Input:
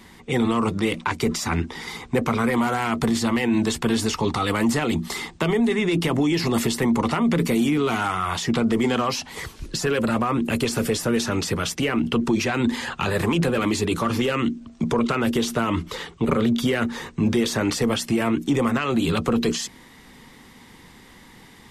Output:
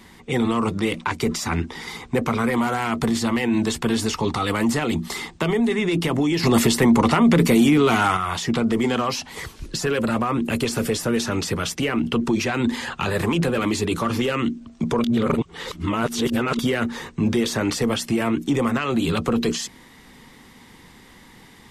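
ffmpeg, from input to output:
ffmpeg -i in.wav -filter_complex "[0:a]asettb=1/sr,asplit=3[link_01][link_02][link_03];[link_01]atrim=end=6.434[link_04];[link_02]atrim=start=6.43:end=8.17,asetpts=PTS-STARTPTS,afade=type=in:duration=0.004:curve=qsin,afade=type=out:start_time=1.736:duration=0.004:curve=qsin,acontrast=31[link_05];[link_03]atrim=start=8.166[link_06];[link_04][link_05]acrossfade=duration=0.004:curve1=hsin:curve2=qsin[link_07];[link_07][link_06]acrossfade=duration=0.004:curve1=qsin:curve2=hsin,asplit=3[link_08][link_09][link_10];[link_08]atrim=end=15.042[link_11];[link_09]atrim=start=15.038:end=16.592,asetpts=PTS-STARTPTS,areverse[link_12];[link_10]atrim=start=16.588[link_13];[link_11][link_12]acrossfade=duration=0.004:curve1=hsin:curve2=hsin[link_14];[link_14][link_13]acrossfade=duration=0.004:curve1=hsin:curve2=hsin" out.wav

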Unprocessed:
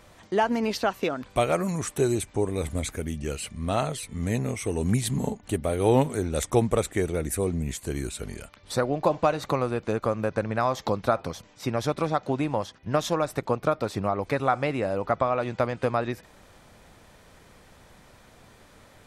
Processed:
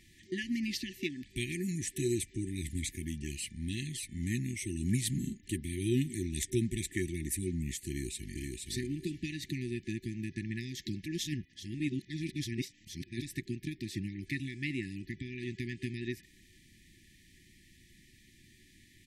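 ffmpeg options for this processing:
ffmpeg -i in.wav -filter_complex "[0:a]asplit=2[link_01][link_02];[link_02]afade=type=in:start_time=7.88:duration=0.01,afade=type=out:start_time=8.4:duration=0.01,aecho=0:1:470|940|1410:0.707946|0.141589|0.0283178[link_03];[link_01][link_03]amix=inputs=2:normalize=0,asplit=3[link_04][link_05][link_06];[link_04]atrim=end=11.062[link_07];[link_05]atrim=start=11.058:end=13.222,asetpts=PTS-STARTPTS,areverse[link_08];[link_06]atrim=start=13.218[link_09];[link_07][link_08]acrossfade=duration=0.004:curve1=hsin:curve2=hsin[link_10];[link_10][link_09]acrossfade=duration=0.004:curve1=hsin:curve2=hsin,afftfilt=real='re*(1-between(b*sr/4096,380,1700))':imag='im*(1-between(b*sr/4096,380,1700))':win_size=4096:overlap=0.75,lowshelf=frequency=420:gain=-3,volume=-4dB" out.wav

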